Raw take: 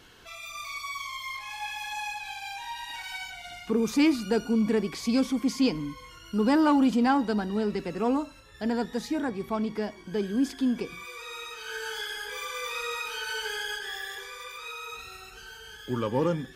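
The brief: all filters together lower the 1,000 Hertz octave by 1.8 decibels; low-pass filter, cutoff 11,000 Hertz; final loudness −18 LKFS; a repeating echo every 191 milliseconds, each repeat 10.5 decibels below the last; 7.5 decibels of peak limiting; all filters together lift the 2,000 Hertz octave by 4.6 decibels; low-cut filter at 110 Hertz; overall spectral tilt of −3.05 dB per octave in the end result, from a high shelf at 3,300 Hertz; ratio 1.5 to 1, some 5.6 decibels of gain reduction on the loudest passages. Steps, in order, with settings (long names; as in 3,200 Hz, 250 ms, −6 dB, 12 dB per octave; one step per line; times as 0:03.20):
high-pass filter 110 Hz
low-pass filter 11,000 Hz
parametric band 1,000 Hz −4 dB
parametric band 2,000 Hz +5 dB
high-shelf EQ 3,300 Hz +6.5 dB
downward compressor 1.5 to 1, threshold −34 dBFS
brickwall limiter −23.5 dBFS
repeating echo 191 ms, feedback 30%, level −10.5 dB
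level +15 dB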